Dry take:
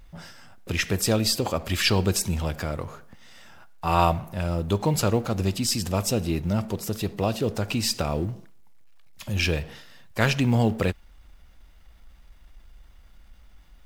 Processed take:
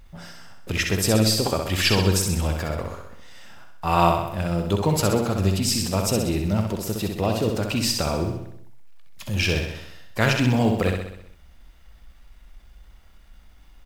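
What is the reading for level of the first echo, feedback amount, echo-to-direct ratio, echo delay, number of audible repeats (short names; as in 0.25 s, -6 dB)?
-5.0 dB, 56%, -3.5 dB, 64 ms, 6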